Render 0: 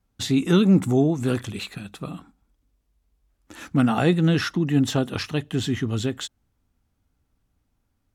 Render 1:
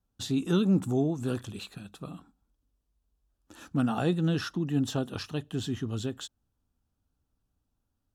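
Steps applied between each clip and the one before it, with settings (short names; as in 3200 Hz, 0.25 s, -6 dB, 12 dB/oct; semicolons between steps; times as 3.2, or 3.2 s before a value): bell 2100 Hz -14 dB 0.29 oct; gain -7.5 dB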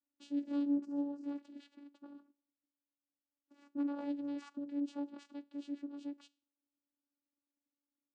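resonator 130 Hz, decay 0.39 s, harmonics all, mix 40%; vocoder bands 8, saw 285 Hz; gain -6 dB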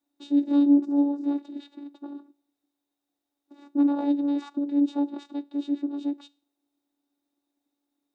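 small resonant body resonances 380/710/3700 Hz, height 15 dB, ringing for 20 ms; gain +5.5 dB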